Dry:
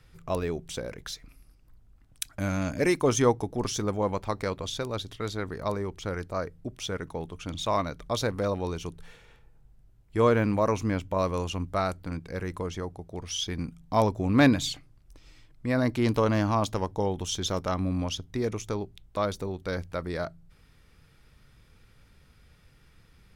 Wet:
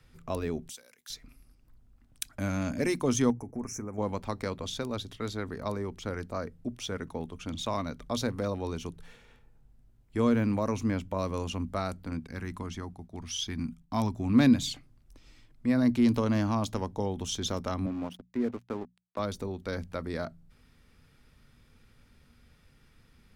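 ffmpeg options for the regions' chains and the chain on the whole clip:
ffmpeg -i in.wav -filter_complex "[0:a]asettb=1/sr,asplit=3[link_01][link_02][link_03];[link_01]atrim=end=0.694[link_04];[link_02]atrim=start=0.69:end=1.1,asetpts=PTS-STARTPTS,afade=type=in:duration=0.004:curve=qsin,afade=type=out:start_time=0.406:duration=0.004:curve=qsin,aderivative,asoftclip=type=hard:threshold=-32dB[link_05];[link_03]atrim=start=1.096[link_06];[link_04][link_05]acrossfade=duration=0.004:curve1=hsin:curve2=qsin[link_07];[link_07][link_06]acrossfade=duration=0.004:curve1=qsin:curve2=hsin,asettb=1/sr,asplit=3[link_08][link_09][link_10];[link_08]atrim=end=3.304[link_11];[link_09]atrim=start=3.3:end=3.98,asetpts=PTS-STARTPTS,afade=type=in:duration=0.004:curve=qsin,afade=type=out:start_time=0.676:duration=0.004:curve=qsin,agate=range=-33dB:threshold=-39dB:ratio=3:release=100:detection=peak,asuperstop=centerf=3700:order=12:qfactor=1.2,acompressor=threshold=-32dB:ratio=6:attack=3.2:release=140:knee=1:detection=peak[link_12];[link_10]atrim=start=3.976[link_13];[link_11][link_12]acrossfade=duration=0.004:curve1=hsin:curve2=qsin[link_14];[link_14][link_13]acrossfade=duration=0.004:curve1=qsin:curve2=hsin,asettb=1/sr,asplit=3[link_15][link_16][link_17];[link_15]atrim=end=12.274[link_18];[link_16]atrim=start=12.27:end=14.33,asetpts=PTS-STARTPTS,afade=type=in:duration=0.004:curve=qsin,afade=type=out:start_time=2.056:duration=0.004:curve=qsin,agate=range=-33dB:threshold=-47dB:ratio=3:release=100:detection=peak,equalizer=frequency=500:width_type=o:width=0.59:gain=-12[link_19];[link_17]atrim=start=14.326[link_20];[link_18][link_19]acrossfade=duration=0.004:curve1=hsin:curve2=qsin[link_21];[link_21][link_20]acrossfade=duration=0.004:curve1=qsin:curve2=hsin,asettb=1/sr,asplit=3[link_22][link_23][link_24];[link_22]atrim=end=17.864[link_25];[link_23]atrim=start=17.86:end=19.19,asetpts=PTS-STARTPTS,afade=type=in:duration=0.004:curve=qsin,afade=type=out:start_time=1.326:duration=0.004:curve=qsin,highpass=170,lowpass=2100,aeval=exprs='sgn(val(0))*max(abs(val(0))-0.00631,0)':channel_layout=same[link_26];[link_24]atrim=start=19.186[link_27];[link_25][link_26]acrossfade=duration=0.004:curve1=hsin:curve2=qsin[link_28];[link_28][link_27]acrossfade=duration=0.004:curve1=qsin:curve2=hsin,equalizer=frequency=240:width=7.1:gain=10.5,bandreject=frequency=60:width_type=h:width=6,bandreject=frequency=120:width_type=h:width=6,bandreject=frequency=180:width_type=h:width=6,acrossover=split=280|3000[link_29][link_30][link_31];[link_30]acompressor=threshold=-29dB:ratio=2[link_32];[link_29][link_32][link_31]amix=inputs=3:normalize=0,volume=-2.5dB" out.wav

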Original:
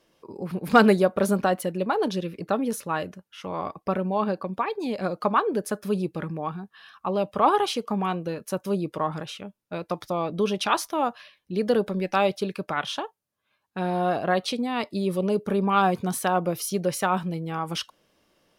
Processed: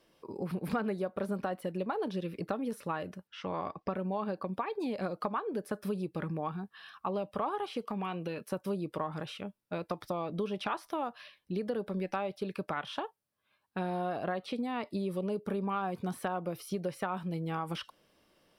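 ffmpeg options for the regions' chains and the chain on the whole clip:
ffmpeg -i in.wav -filter_complex "[0:a]asettb=1/sr,asplit=3[link_01][link_02][link_03];[link_01]atrim=end=3.274[link_04];[link_02]atrim=start=3.27:end=3.94,asetpts=PTS-STARTPTS,afade=type=in:duration=0.004:curve=qsin,afade=type=out:start_time=0.666:duration=0.004:curve=qsin,lowpass=frequency=6400:width=0.5412,lowpass=frequency=6400:width=1.3066,equalizer=frequency=1700:width_type=o:width=0.23:gain=3[link_05];[link_03]atrim=start=3.936[link_06];[link_04][link_05]acrossfade=duration=0.004:curve1=hsin:curve2=qsin[link_07];[link_07][link_06]acrossfade=duration=0.004:curve1=qsin:curve2=hsin,asettb=1/sr,asplit=3[link_08][link_09][link_10];[link_08]atrim=end=7.874[link_11];[link_09]atrim=start=7.87:end=8.46,asetpts=PTS-STARTPTS,afade=type=in:duration=0.004:curve=qsin,afade=type=out:start_time=0.586:duration=0.004:curve=qsin,highpass=110,equalizer=frequency=2700:width_type=o:width=0.76:gain=7.5,acompressor=threshold=-31dB:ratio=2:attack=3.2:release=140:knee=1:detection=peak[link_12];[link_10]atrim=start=8.456[link_13];[link_11][link_12]acrossfade=duration=0.004:curve1=hsin:curve2=qsin[link_14];[link_14][link_13]acrossfade=duration=0.004:curve1=qsin:curve2=hsin,acrossover=split=2600[link_15][link_16];[link_16]acompressor=threshold=-43dB:ratio=4:attack=1:release=60[link_17];[link_15][link_17]amix=inputs=2:normalize=0,equalizer=frequency=6600:width=7.7:gain=-8.5,acompressor=threshold=-29dB:ratio=6,volume=-2dB" out.wav

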